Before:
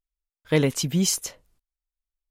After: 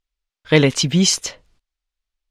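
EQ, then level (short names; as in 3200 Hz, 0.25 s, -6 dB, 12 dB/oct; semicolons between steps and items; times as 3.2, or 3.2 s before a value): LPF 4400 Hz 12 dB/oct; high shelf 2200 Hz +8.5 dB; +6.5 dB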